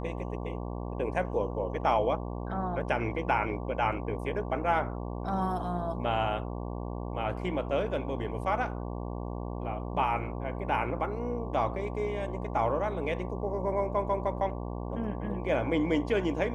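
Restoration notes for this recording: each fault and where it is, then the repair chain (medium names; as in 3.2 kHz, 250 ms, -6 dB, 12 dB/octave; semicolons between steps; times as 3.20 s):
buzz 60 Hz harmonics 19 -36 dBFS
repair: de-hum 60 Hz, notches 19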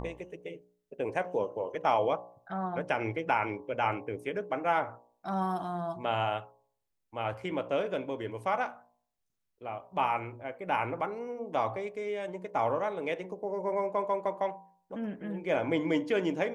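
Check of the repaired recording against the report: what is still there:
nothing left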